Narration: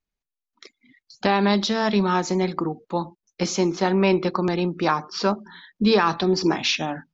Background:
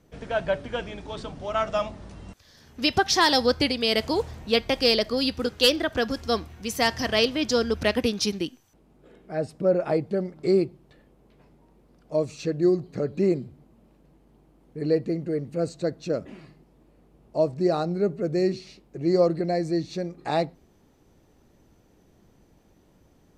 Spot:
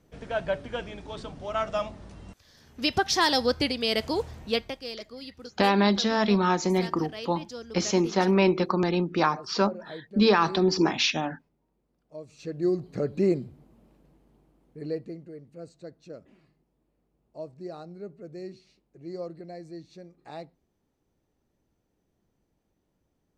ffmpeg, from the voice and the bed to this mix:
-filter_complex "[0:a]adelay=4350,volume=-2dB[a];[1:a]volume=13dB,afade=t=out:st=4.48:d=0.31:silence=0.199526,afade=t=in:st=12.25:d=0.71:silence=0.158489,afade=t=out:st=13.75:d=1.58:silence=0.177828[b];[a][b]amix=inputs=2:normalize=0"

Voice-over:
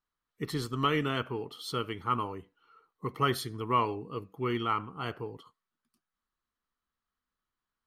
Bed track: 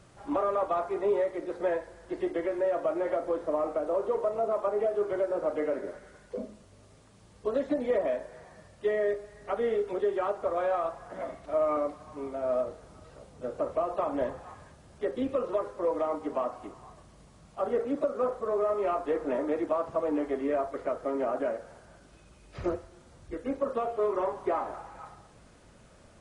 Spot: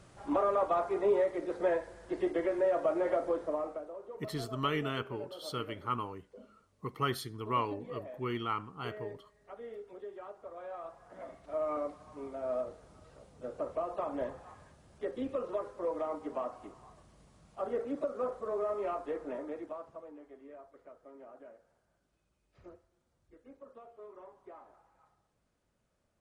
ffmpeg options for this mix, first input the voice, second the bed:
-filter_complex "[0:a]adelay=3800,volume=-4.5dB[a];[1:a]volume=10dB,afade=t=out:st=3.22:d=0.71:silence=0.158489,afade=t=in:st=10.6:d=1.26:silence=0.281838,afade=t=out:st=18.79:d=1.35:silence=0.149624[b];[a][b]amix=inputs=2:normalize=0"

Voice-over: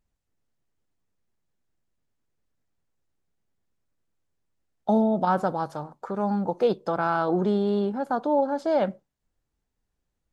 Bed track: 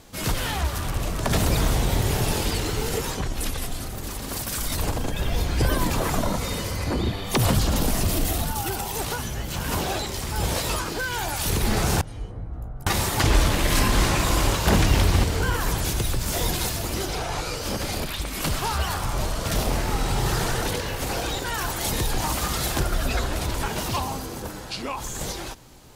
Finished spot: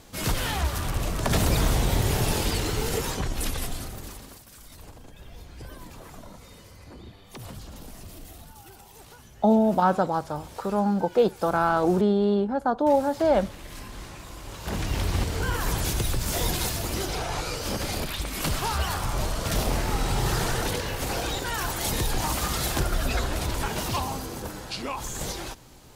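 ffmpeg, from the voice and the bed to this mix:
-filter_complex "[0:a]adelay=4550,volume=2dB[a];[1:a]volume=17.5dB,afade=t=out:st=3.65:d=0.75:silence=0.112202,afade=t=in:st=14.44:d=1.35:silence=0.11885[b];[a][b]amix=inputs=2:normalize=0"

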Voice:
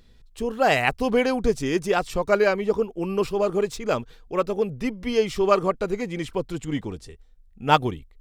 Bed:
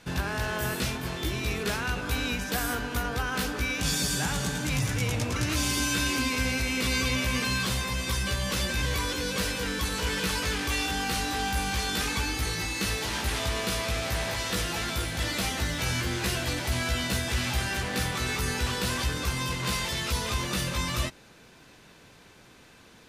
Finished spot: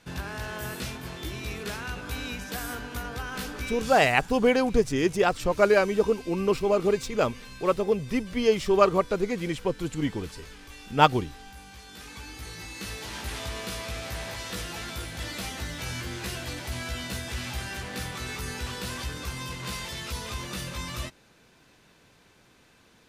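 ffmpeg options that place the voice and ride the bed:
-filter_complex "[0:a]adelay=3300,volume=-0.5dB[a];[1:a]volume=7.5dB,afade=t=out:st=3.62:d=0.48:silence=0.223872,afade=t=in:st=11.86:d=1.46:silence=0.237137[b];[a][b]amix=inputs=2:normalize=0"

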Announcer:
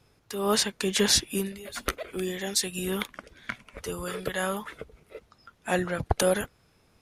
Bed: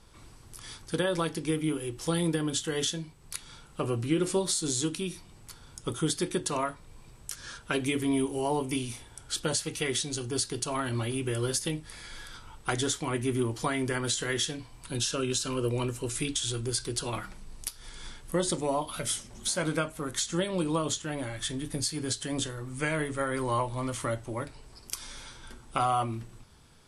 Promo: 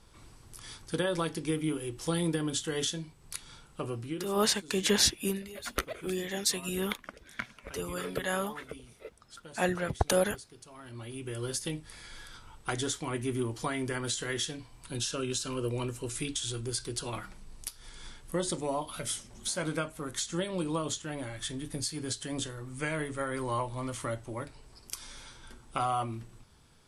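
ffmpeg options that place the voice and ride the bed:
-filter_complex "[0:a]adelay=3900,volume=-2.5dB[a];[1:a]volume=14dB,afade=t=out:st=3.52:d=0.89:silence=0.133352,afade=t=in:st=10.77:d=0.92:silence=0.158489[b];[a][b]amix=inputs=2:normalize=0"

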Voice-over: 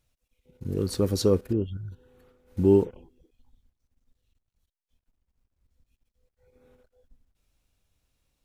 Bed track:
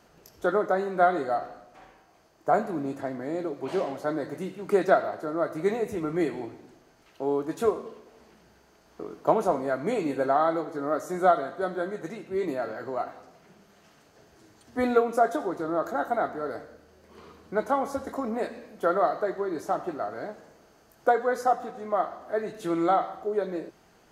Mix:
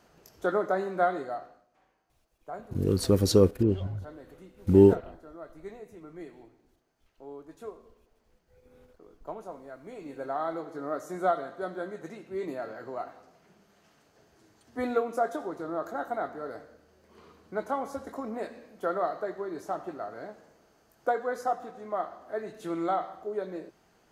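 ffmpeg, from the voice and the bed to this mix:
-filter_complex "[0:a]adelay=2100,volume=2dB[a];[1:a]volume=9dB,afade=t=out:st=0.87:d=0.8:silence=0.188365,afade=t=in:st=9.92:d=0.81:silence=0.266073[b];[a][b]amix=inputs=2:normalize=0"

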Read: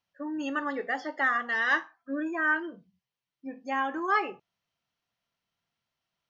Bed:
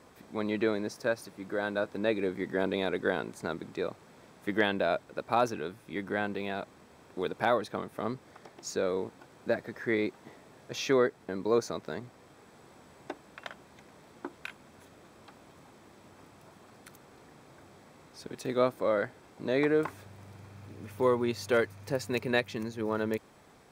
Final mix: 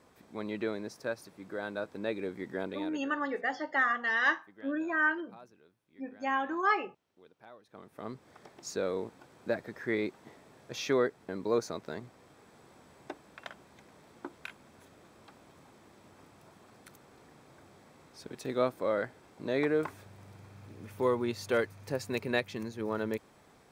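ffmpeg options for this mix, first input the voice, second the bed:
-filter_complex "[0:a]adelay=2550,volume=-1.5dB[a];[1:a]volume=18.5dB,afade=t=out:st=2.55:d=0.55:silence=0.0891251,afade=t=in:st=7.64:d=0.8:silence=0.0630957[b];[a][b]amix=inputs=2:normalize=0"

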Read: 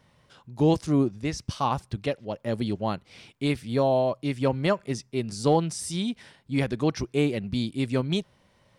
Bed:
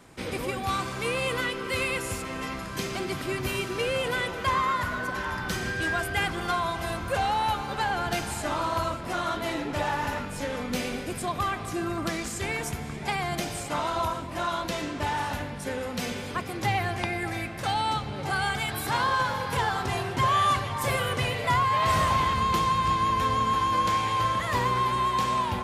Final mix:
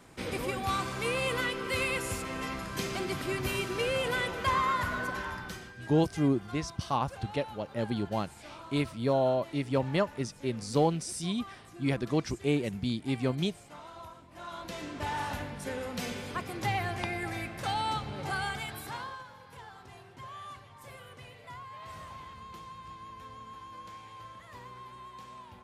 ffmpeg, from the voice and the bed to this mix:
-filter_complex "[0:a]adelay=5300,volume=-4dB[a];[1:a]volume=12dB,afade=t=out:st=5.02:d=0.68:silence=0.149624,afade=t=in:st=14.3:d=0.92:silence=0.188365,afade=t=out:st=18.23:d=1.01:silence=0.133352[b];[a][b]amix=inputs=2:normalize=0"

